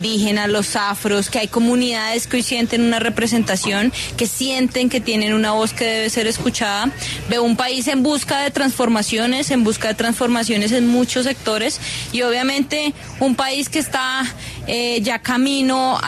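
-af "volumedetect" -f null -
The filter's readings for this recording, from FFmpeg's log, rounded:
mean_volume: -18.2 dB
max_volume: -4.8 dB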